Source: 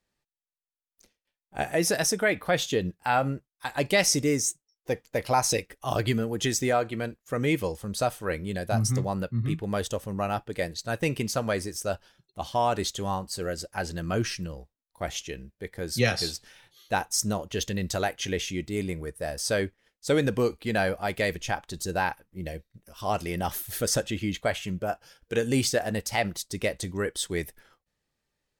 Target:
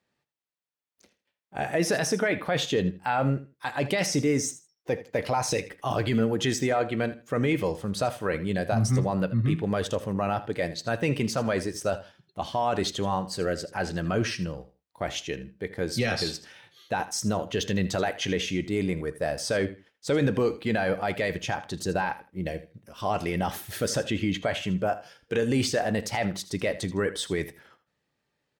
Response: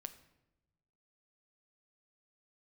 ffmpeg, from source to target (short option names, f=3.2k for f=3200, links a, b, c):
-filter_complex "[0:a]highpass=98,equalizer=f=13k:w=0.94:g=-7.5,alimiter=limit=-20.5dB:level=0:latency=1:release=13,aecho=1:1:80|160:0.168|0.0353,asplit=2[a][b];[1:a]atrim=start_sample=2205,atrim=end_sample=3528,lowpass=4.5k[c];[b][c]afir=irnorm=-1:irlink=0,volume=1.5dB[d];[a][d]amix=inputs=2:normalize=0"